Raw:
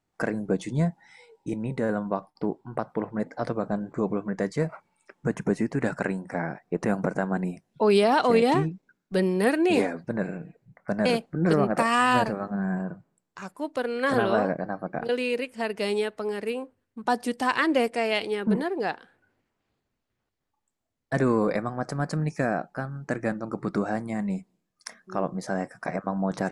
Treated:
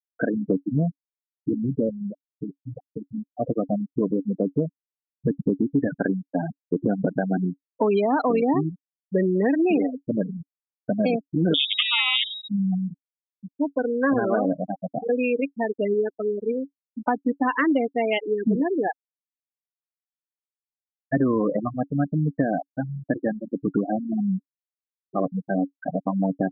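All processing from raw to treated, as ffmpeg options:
-filter_complex "[0:a]asettb=1/sr,asplit=3[a][b][c];[a]atrim=end=1.894[d];[b]atrim=start=1.89:end=3.34,asetpts=PTS-STARTPTS,afade=t=in:d=0.004:c=qsin,afade=t=out:st=1.446:d=0.004:c=qsin,lowshelf=f=130:g=10.5,acompressor=threshold=-29dB:ratio=16:attack=3.2:release=140:knee=1:detection=peak[e];[c]atrim=start=3.336[f];[d][e]acrossfade=d=0.004:c1=hsin:c2=qsin[g];[g][f]acrossfade=d=0.004:c1=qsin:c2=hsin,asettb=1/sr,asplit=3[h][i][j];[h]atrim=end=11.544[k];[i]atrim=start=11.54:end=12.48,asetpts=PTS-STARTPTS,afade=t=in:d=0.004:c=qsin,afade=t=out:st=0.936:d=0.004:c=qsin,acrusher=bits=4:dc=4:mix=0:aa=0.000001,lowpass=f=3.2k:t=q:w=0.5098,lowpass=f=3.2k:t=q:w=0.6013,lowpass=f=3.2k:t=q:w=0.9,lowpass=f=3.2k:t=q:w=2.563,afreqshift=-3800[l];[j]atrim=start=12.476[m];[k][l]acrossfade=d=0.004:c1=hsin:c2=qsin[n];[n][m]acrossfade=d=0.004:c1=qsin:c2=hsin,asettb=1/sr,asplit=3[o][p][q];[o]atrim=end=23.154[r];[p]atrim=start=23.15:end=23.66,asetpts=PTS-STARTPTS,afade=t=in:d=0.004:c=qsin,afade=t=out:st=0.506:d=0.004:c=qsin,lowshelf=f=120:g=-6.5,aeval=exprs='val(0)+0.00447*(sin(2*PI*50*n/s)+sin(2*PI*2*50*n/s)/2+sin(2*PI*3*50*n/s)/3+sin(2*PI*4*50*n/s)/4+sin(2*PI*5*50*n/s)/5)':c=same[s];[q]atrim=start=23.656[t];[r][s]acrossfade=d=0.004:c1=hsin:c2=qsin[u];[u][t]acrossfade=d=0.004:c1=qsin:c2=hsin,afftfilt=real='re*gte(hypot(re,im),0.126)':imag='im*gte(hypot(re,im),0.126)':win_size=1024:overlap=0.75,equalizer=f=280:w=6:g=10.5,acompressor=threshold=-22dB:ratio=6,volume=4.5dB"

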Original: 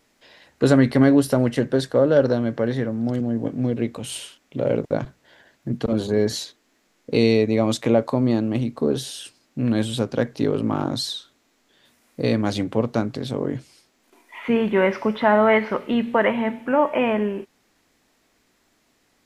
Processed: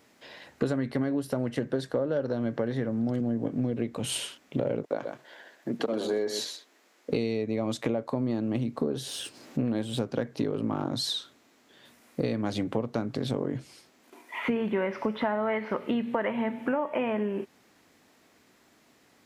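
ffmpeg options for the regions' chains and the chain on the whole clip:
-filter_complex "[0:a]asettb=1/sr,asplit=3[a][b][c];[a]atrim=end=4.834[d];[b]atrim=start=4.83:end=7.1,asetpts=PTS-STARTPTS,afade=t=in:d=0.004:c=qsin,afade=t=out:st=2.266:d=0.004:c=qsin,highpass=360,aecho=1:1:126:0.282,atrim=end_sample=100107[e];[c]atrim=start=7.096[f];[d][e]acrossfade=d=0.004:c1=hsin:c2=qsin[g];[g][f]acrossfade=d=0.004:c1=qsin:c2=hsin,asettb=1/sr,asplit=3[h][i][j];[h]atrim=end=9.074[k];[i]atrim=start=9.07:end=9.99,asetpts=PTS-STARTPTS,afade=t=in:d=0.004:c=qsin,afade=t=out:st=0.916:d=0.004:c=qsin,aeval=exprs='if(lt(val(0),0),0.708*val(0),val(0))':c=same,equalizer=f=430:t=o:w=1.6:g=4,acompressor=mode=upward:threshold=-40dB:ratio=2.5:attack=3.2:release=140:knee=2.83:detection=peak[l];[j]atrim=start=9.986[m];[k][l]acrossfade=d=0.004:c1=hsin:c2=qsin[n];[n][m]acrossfade=d=0.004:c1=qsin:c2=hsin,highpass=87,equalizer=f=7.6k:t=o:w=2.8:g=-3.5,acompressor=threshold=-29dB:ratio=10,volume=4dB"

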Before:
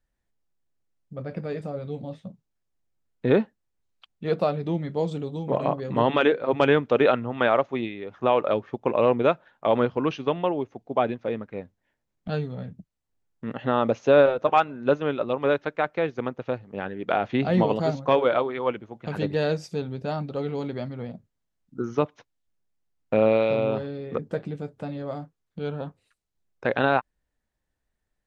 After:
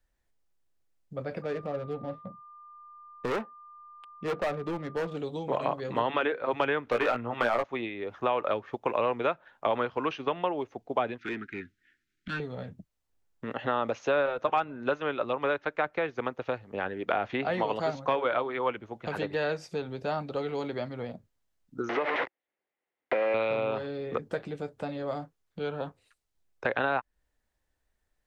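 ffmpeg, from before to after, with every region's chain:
-filter_complex "[0:a]asettb=1/sr,asplit=3[a][b][c];[a]atrim=end=1.424[d];[b]atrim=start=1.42:end=5.17,asetpts=PTS-STARTPTS,afade=t=in:d=0.004:c=qsin,afade=t=out:st=3.746:d=0.004:c=qsin,adynamicsmooth=sensitivity=6:basefreq=830,asoftclip=type=hard:threshold=-23dB,aeval=exprs='val(0)+0.00316*sin(2*PI*1200*n/s)':c=same[e];[c]atrim=start=5.166[f];[d][e]acrossfade=d=0.004:c1=hsin:c2=qsin[g];[g][f]acrossfade=d=0.004:c1=qsin:c2=hsin,asettb=1/sr,asplit=3[h][i][j];[h]atrim=end=6.854[k];[i]atrim=start=6.85:end=7.64,asetpts=PTS-STARTPTS,afade=t=in:d=0.004:c=qsin,afade=t=out:st=0.786:d=0.004:c=qsin,lowshelf=f=450:g=3,asoftclip=type=hard:threshold=-13dB,asplit=2[l][m];[m]adelay=17,volume=-4dB[n];[l][n]amix=inputs=2:normalize=0,atrim=end_sample=34839[o];[j]atrim=start=7.636[p];[k][o]acrossfade=d=0.004:c1=hsin:c2=qsin[q];[q][p]acrossfade=d=0.004:c1=qsin:c2=hsin,asettb=1/sr,asplit=3[r][s][t];[r]atrim=end=11.184[u];[s]atrim=start=11.18:end=12.4,asetpts=PTS-STARTPTS,afade=t=in:d=0.004:c=qsin,afade=t=out:st=1.216:d=0.004:c=qsin,asuperstop=centerf=720:order=12:qfactor=0.71,asplit=2[v][w];[w]highpass=f=720:p=1,volume=16dB,asoftclip=type=tanh:threshold=-21dB[x];[v][x]amix=inputs=2:normalize=0,lowpass=f=2.1k:p=1,volume=-6dB[y];[t]atrim=start=12.396[z];[u][y]acrossfade=d=0.004:c1=hsin:c2=qsin[aa];[aa][z]acrossfade=d=0.004:c1=qsin:c2=hsin,asettb=1/sr,asplit=3[ab][ac][ad];[ab]atrim=end=21.894[ae];[ac]atrim=start=21.89:end=23.34,asetpts=PTS-STARTPTS,afade=t=in:d=0.004:c=qsin,afade=t=out:st=1.446:d=0.004:c=qsin,aeval=exprs='val(0)+0.5*0.0708*sgn(val(0))':c=same,acompressor=threshold=-21dB:ratio=5:attack=3.2:release=140:knee=1:detection=peak,highpass=300,equalizer=f=360:t=q:w=4:g=5,equalizer=f=520:t=q:w=4:g=6,equalizer=f=810:t=q:w=4:g=4,equalizer=f=2k:t=q:w=4:g=8,lowpass=f=3.2k:w=0.5412,lowpass=f=3.2k:w=1.3066[af];[ad]atrim=start=23.336[ag];[ae][af]acrossfade=d=0.004:c1=hsin:c2=qsin[ah];[ah][ag]acrossfade=d=0.004:c1=qsin:c2=hsin,equalizer=f=170:t=o:w=1.4:g=-6,acrossover=split=330|860|2600[ai][aj][ak][al];[ai]acompressor=threshold=-42dB:ratio=4[am];[aj]acompressor=threshold=-35dB:ratio=4[an];[ak]acompressor=threshold=-31dB:ratio=4[ao];[al]acompressor=threshold=-51dB:ratio=4[ap];[am][an][ao][ap]amix=inputs=4:normalize=0,volume=2.5dB"

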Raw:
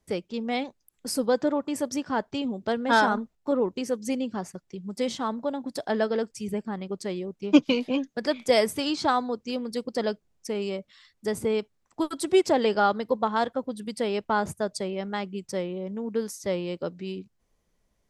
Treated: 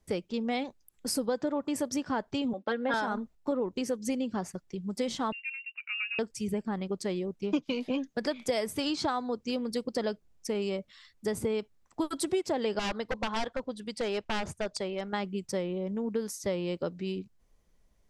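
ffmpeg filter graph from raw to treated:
-filter_complex "[0:a]asettb=1/sr,asplit=3[a][b][c];[a]atrim=end=2.534[d];[b]atrim=start=2.53:end=2.94,asetpts=PTS-STARTPTS,afade=t=in:d=0.004:c=qsin,afade=t=out:st=0.406:d=0.004:c=qsin,agate=range=-33dB:threshold=-40dB:ratio=3:release=100:detection=peak,highpass=340,lowpass=3.4k,aecho=1:1:3.7:0.83,atrim=end_sample=18081[e];[c]atrim=start=2.936[f];[d][e]acrossfade=d=0.004:c1=hsin:c2=qsin[g];[g][f]acrossfade=d=0.004:c1=qsin:c2=hsin,asettb=1/sr,asplit=3[h][i][j];[h]atrim=end=5.324[k];[i]atrim=start=5.32:end=6.19,asetpts=PTS-STARTPTS,afade=t=in:d=0.004:c=qsin,afade=t=out:st=0.866:d=0.004:c=qsin,lowpass=f=2.6k:t=q:w=0.5098,lowpass=f=2.6k:t=q:w=0.6013,lowpass=f=2.6k:t=q:w=0.9,lowpass=f=2.6k:t=q:w=2.563,afreqshift=-3000,aderivative[l];[j]atrim=start=6.186[m];[k][l]acrossfade=d=0.004:c1=hsin:c2=qsin[n];[n][m]acrossfade=d=0.004:c1=qsin:c2=hsin,asettb=1/sr,asplit=3[o][p][q];[o]atrim=end=12.794[r];[p]atrim=start=12.79:end=15.13,asetpts=PTS-STARTPTS,afade=t=in:d=0.004:c=qsin,afade=t=out:st=2.336:d=0.004:c=qsin,equalizer=f=170:t=o:w=2.5:g=-6.5,aeval=exprs='0.0631*(abs(mod(val(0)/0.0631+3,4)-2)-1)':c=same,lowpass=7.2k[s];[q]atrim=start=15.126[t];[r][s]acrossfade=d=0.004:c1=hsin:c2=qsin[u];[u][t]acrossfade=d=0.004:c1=qsin:c2=hsin,lowshelf=f=60:g=8.5,acompressor=threshold=-27dB:ratio=5"

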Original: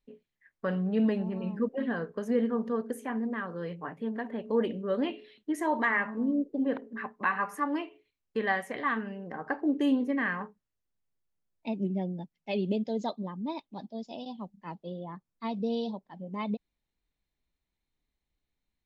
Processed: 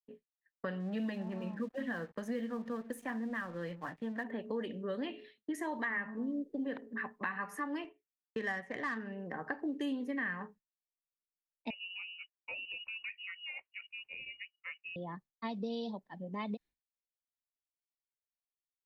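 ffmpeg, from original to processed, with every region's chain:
-filter_complex "[0:a]asettb=1/sr,asplit=3[a][b][c];[a]atrim=end=0.804[d];[b]atrim=start=0.8:end=4.24,asetpts=PTS-STARTPTS,afade=t=in:d=0.004:c=qsin,afade=t=out:st=3.436:d=0.004:c=qsin,bandreject=f=420:w=6,aeval=exprs='sgn(val(0))*max(abs(val(0))-0.00168,0)':c=same[e];[c]atrim=start=4.236[f];[d][e]acrossfade=d=0.004:c1=hsin:c2=qsin[g];[g][f]acrossfade=d=0.004:c1=qsin:c2=hsin,asettb=1/sr,asplit=3[h][i][j];[h]atrim=end=7.844[k];[i]atrim=start=7.84:end=9.18,asetpts=PTS-STARTPTS,afade=t=in:d=0.004:c=qsin,afade=t=out:st=1.336:d=0.004:c=qsin,adynamicsmooth=sensitivity=6:basefreq=2.8k,agate=range=-10dB:threshold=-54dB:ratio=16:release=100:detection=peak[l];[j]atrim=start=9.176[m];[k][l]acrossfade=d=0.004:c1=hsin:c2=qsin[n];[n][m]acrossfade=d=0.004:c1=qsin:c2=hsin,asettb=1/sr,asplit=3[o][p][q];[o]atrim=end=11.704[r];[p]atrim=start=11.7:end=14.96,asetpts=PTS-STARTPTS,afade=t=in:d=0.004:c=qsin,afade=t=out:st=3.256:d=0.004:c=qsin,highpass=410,acompressor=threshold=-38dB:ratio=2.5:attack=3.2:release=140:knee=1:detection=peak,lowpass=f=2.6k:t=q:w=0.5098,lowpass=f=2.6k:t=q:w=0.6013,lowpass=f=2.6k:t=q:w=0.9,lowpass=f=2.6k:t=q:w=2.563,afreqshift=-3100[s];[q]atrim=start=14.956[t];[r][s]acrossfade=d=0.004:c1=hsin:c2=qsin[u];[u][t]acrossfade=d=0.004:c1=qsin:c2=hsin,agate=range=-33dB:threshold=-47dB:ratio=3:detection=peak,equalizer=f=1.8k:w=7.9:g=8.5,acrossover=split=220|2600[v][w][x];[v]acompressor=threshold=-45dB:ratio=4[y];[w]acompressor=threshold=-36dB:ratio=4[z];[x]acompressor=threshold=-47dB:ratio=4[aa];[y][z][aa]amix=inputs=3:normalize=0,volume=-1.5dB"

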